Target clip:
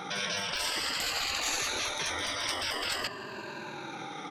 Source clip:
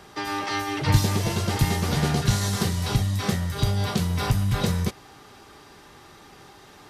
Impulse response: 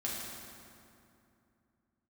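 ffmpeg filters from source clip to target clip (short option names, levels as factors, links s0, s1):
-filter_complex "[0:a]afftfilt=real='re*pow(10,16/40*sin(2*PI*(1.4*log(max(b,1)*sr/1024/100)/log(2)-(-0.3)*(pts-256)/sr)))':imag='im*pow(10,16/40*sin(2*PI*(1.4*log(max(b,1)*sr/1024/100)/log(2)-(-0.3)*(pts-256)/sr)))':win_size=1024:overlap=0.75,lowpass=2500,asplit=2[s0][s1];[s1]asoftclip=type=hard:threshold=0.2,volume=0.316[s2];[s0][s2]amix=inputs=2:normalize=0,highpass=f=140:w=0.5412,highpass=f=140:w=1.3066,aemphasis=mode=production:type=75kf,acrossover=split=290[s3][s4];[s3]asoftclip=type=tanh:threshold=0.0473[s5];[s5][s4]amix=inputs=2:normalize=0,afftfilt=real='re*lt(hypot(re,im),0.0708)':imag='im*lt(hypot(re,im),0.0708)':win_size=1024:overlap=0.75,atempo=1.6,volume=1.58"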